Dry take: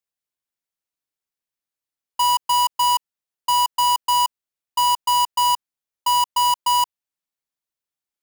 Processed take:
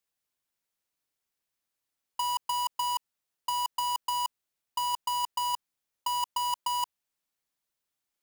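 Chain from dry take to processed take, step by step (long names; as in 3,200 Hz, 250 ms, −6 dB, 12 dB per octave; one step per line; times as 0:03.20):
compressor whose output falls as the input rises −25 dBFS, ratio −1
level −4 dB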